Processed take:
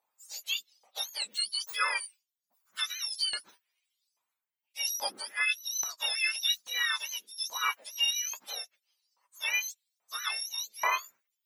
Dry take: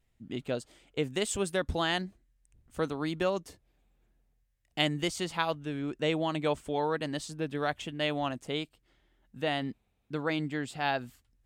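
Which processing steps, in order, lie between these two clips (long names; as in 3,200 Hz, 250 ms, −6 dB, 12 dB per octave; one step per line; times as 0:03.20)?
frequency axis turned over on the octave scale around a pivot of 1,300 Hz
auto-filter high-pass saw up 1.2 Hz 900–5,500 Hz
level +1.5 dB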